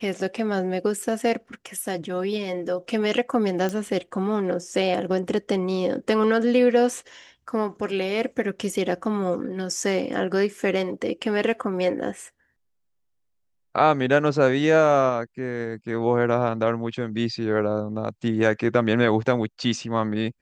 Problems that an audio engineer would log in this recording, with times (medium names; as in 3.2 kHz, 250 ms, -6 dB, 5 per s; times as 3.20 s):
3.69 s: pop -15 dBFS